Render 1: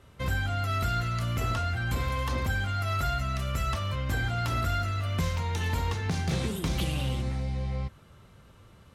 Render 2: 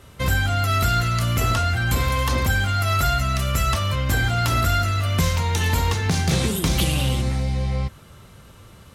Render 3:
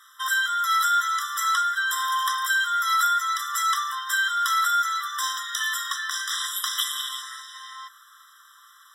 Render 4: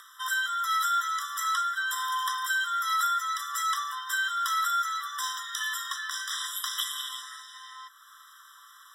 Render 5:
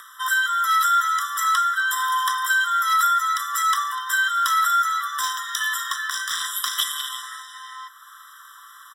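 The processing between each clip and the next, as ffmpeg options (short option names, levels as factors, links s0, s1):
-af "highshelf=f=4900:g=8,volume=2.51"
-filter_complex "[0:a]acrossover=split=160|3500[s0][s1][s2];[s0]asoftclip=type=tanh:threshold=0.0501[s3];[s3][s1][s2]amix=inputs=3:normalize=0,afftfilt=real='re*eq(mod(floor(b*sr/1024/1000),2),1)':imag='im*eq(mod(floor(b*sr/1024/1000),2),1)':win_size=1024:overlap=0.75,volume=1.41"
-af "acompressor=mode=upward:threshold=0.01:ratio=2.5,afreqshift=-16,volume=0.562"
-filter_complex "[0:a]acrossover=split=1800|3700|5600[s0][s1][s2][s3];[s2]acrusher=bits=5:mix=0:aa=0.5[s4];[s0][s1][s4][s3]amix=inputs=4:normalize=0,aecho=1:1:247:0.112,volume=2.51"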